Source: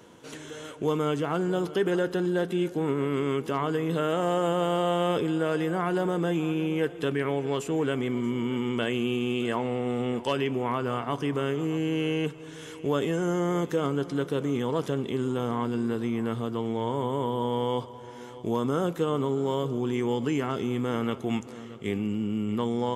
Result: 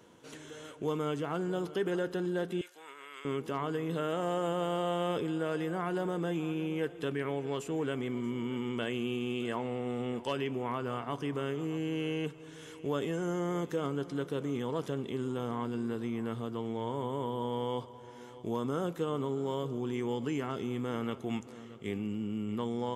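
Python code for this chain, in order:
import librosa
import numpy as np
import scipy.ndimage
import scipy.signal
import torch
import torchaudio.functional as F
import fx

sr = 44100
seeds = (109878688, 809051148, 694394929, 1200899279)

y = fx.highpass(x, sr, hz=1400.0, slope=12, at=(2.61, 3.25))
y = y * 10.0 ** (-6.5 / 20.0)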